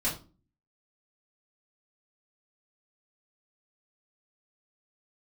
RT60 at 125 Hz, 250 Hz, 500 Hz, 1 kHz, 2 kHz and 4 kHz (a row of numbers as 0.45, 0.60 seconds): 0.60, 0.55, 0.40, 0.35, 0.25, 0.25 seconds